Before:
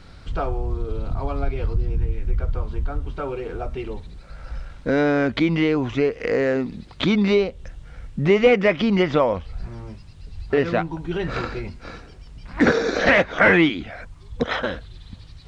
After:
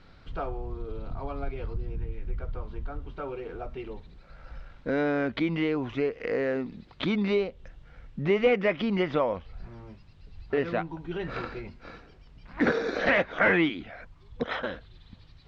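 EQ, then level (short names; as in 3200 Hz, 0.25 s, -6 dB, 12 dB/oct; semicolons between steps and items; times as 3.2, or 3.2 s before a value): LPF 4100 Hz 12 dB/oct; bell 63 Hz -5.5 dB 2.1 oct; -7.0 dB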